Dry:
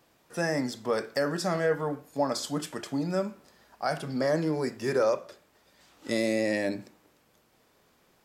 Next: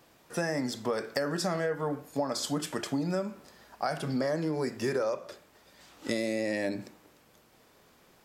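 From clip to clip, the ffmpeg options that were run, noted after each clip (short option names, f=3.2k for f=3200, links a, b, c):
-af "acompressor=threshold=-31dB:ratio=6,volume=4dB"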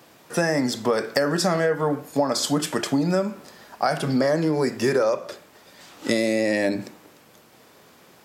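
-af "highpass=100,volume=9dB"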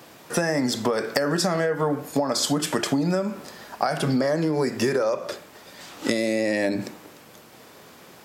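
-af "acompressor=threshold=-24dB:ratio=6,volume=4.5dB"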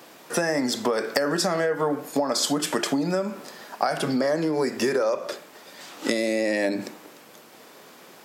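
-af "highpass=210"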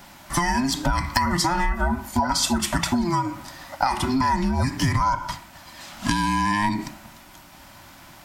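-af "afftfilt=real='real(if(between(b,1,1008),(2*floor((b-1)/24)+1)*24-b,b),0)':imag='imag(if(between(b,1,1008),(2*floor((b-1)/24)+1)*24-b,b),0)*if(between(b,1,1008),-1,1)':win_size=2048:overlap=0.75,volume=2dB"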